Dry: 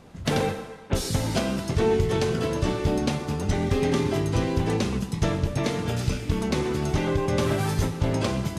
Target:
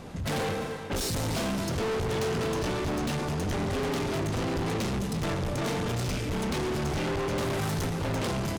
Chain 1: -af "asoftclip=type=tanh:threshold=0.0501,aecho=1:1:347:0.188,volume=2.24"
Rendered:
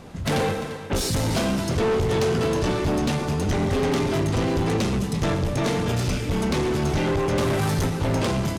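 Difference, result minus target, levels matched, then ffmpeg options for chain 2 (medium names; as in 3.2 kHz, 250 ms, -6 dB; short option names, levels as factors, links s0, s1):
saturation: distortion -4 dB
-af "asoftclip=type=tanh:threshold=0.0178,aecho=1:1:347:0.188,volume=2.24"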